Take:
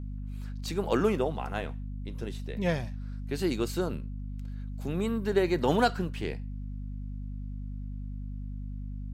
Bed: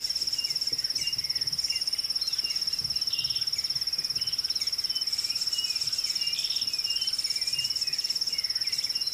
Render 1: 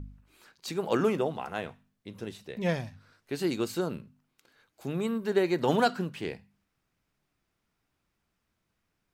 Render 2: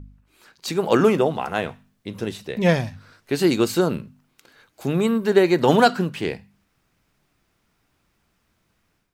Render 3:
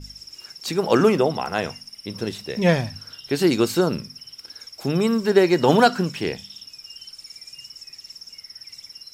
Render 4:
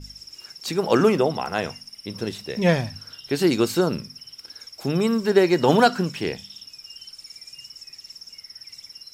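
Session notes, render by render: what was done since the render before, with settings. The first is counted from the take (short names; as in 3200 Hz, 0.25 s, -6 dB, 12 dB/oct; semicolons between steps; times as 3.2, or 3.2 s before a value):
de-hum 50 Hz, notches 5
AGC gain up to 11 dB
add bed -12 dB
gain -1 dB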